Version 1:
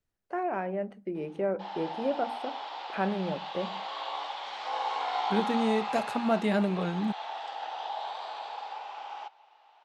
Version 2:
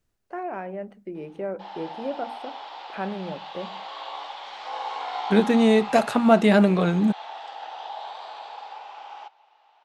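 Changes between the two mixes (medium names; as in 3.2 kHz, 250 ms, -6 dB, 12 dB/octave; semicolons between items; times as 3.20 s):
second voice +10.5 dB; reverb: off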